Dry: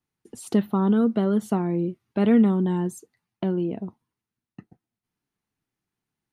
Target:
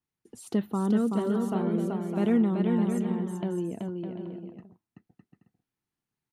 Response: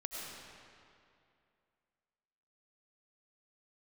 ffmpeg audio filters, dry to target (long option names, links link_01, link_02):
-af "aecho=1:1:380|608|744.8|826.9|876.1:0.631|0.398|0.251|0.158|0.1,volume=-6dB"